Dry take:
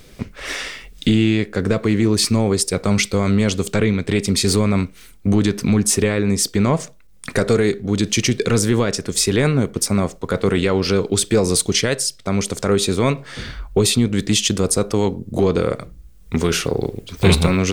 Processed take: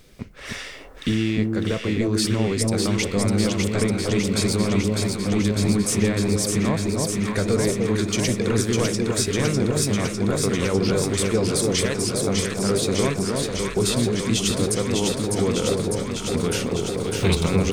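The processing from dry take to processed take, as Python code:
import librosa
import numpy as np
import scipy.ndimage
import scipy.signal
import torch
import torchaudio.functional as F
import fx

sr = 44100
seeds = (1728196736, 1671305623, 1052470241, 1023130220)

y = fx.echo_alternate(x, sr, ms=301, hz=970.0, feedback_pct=88, wet_db=-2.5)
y = y * 10.0 ** (-7.0 / 20.0)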